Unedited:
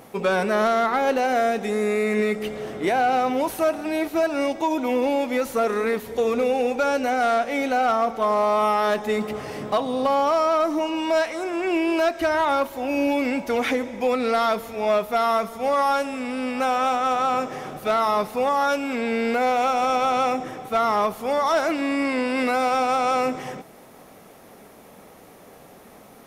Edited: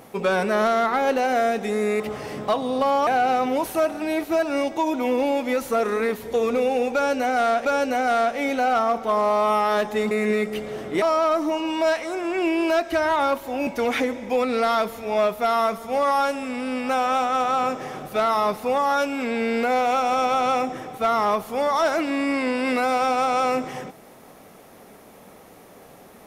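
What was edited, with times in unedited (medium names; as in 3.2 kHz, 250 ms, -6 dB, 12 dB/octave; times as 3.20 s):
2.00–2.91 s: swap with 9.24–10.31 s
6.78–7.49 s: loop, 2 plays
12.96–13.38 s: delete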